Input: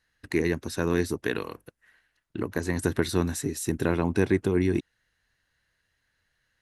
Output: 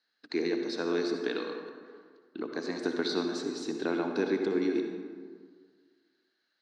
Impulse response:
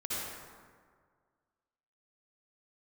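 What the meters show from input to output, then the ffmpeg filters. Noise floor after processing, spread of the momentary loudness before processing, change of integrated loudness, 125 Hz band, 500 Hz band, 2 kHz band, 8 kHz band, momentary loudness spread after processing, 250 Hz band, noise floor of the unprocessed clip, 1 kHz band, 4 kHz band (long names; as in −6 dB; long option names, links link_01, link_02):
−78 dBFS, 8 LU, −4.5 dB, −18.5 dB, −3.0 dB, −5.5 dB, −12.0 dB, 15 LU, −4.0 dB, −76 dBFS, −3.5 dB, +1.5 dB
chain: -filter_complex "[0:a]highpass=frequency=260:width=0.5412,highpass=frequency=260:width=1.3066,equalizer=frequency=360:width_type=q:width=4:gain=-3,equalizer=frequency=550:width_type=q:width=4:gain=-5,equalizer=frequency=1000:width_type=q:width=4:gain=-6,equalizer=frequency=1900:width_type=q:width=4:gain=-9,equalizer=frequency=2800:width_type=q:width=4:gain=-6,equalizer=frequency=4400:width_type=q:width=4:gain=8,lowpass=frequency=5100:width=0.5412,lowpass=frequency=5100:width=1.3066,asplit=2[link_01][link_02];[1:a]atrim=start_sample=2205[link_03];[link_02][link_03]afir=irnorm=-1:irlink=0,volume=-6dB[link_04];[link_01][link_04]amix=inputs=2:normalize=0,volume=-4dB"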